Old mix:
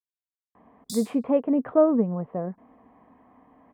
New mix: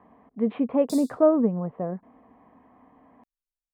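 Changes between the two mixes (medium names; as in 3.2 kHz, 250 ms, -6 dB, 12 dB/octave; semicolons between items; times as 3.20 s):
speech: entry -0.55 s; background -3.5 dB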